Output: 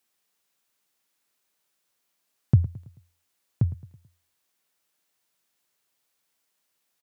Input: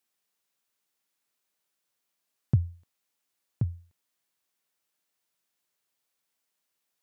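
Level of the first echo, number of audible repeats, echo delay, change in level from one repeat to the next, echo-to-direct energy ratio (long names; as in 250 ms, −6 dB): −17.0 dB, 3, 109 ms, −7.0 dB, −16.0 dB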